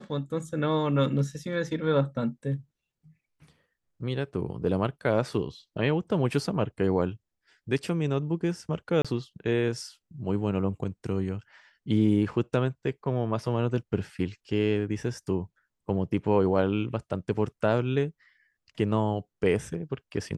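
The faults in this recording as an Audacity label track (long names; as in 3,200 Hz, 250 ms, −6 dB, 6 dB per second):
9.020000	9.050000	drop-out 26 ms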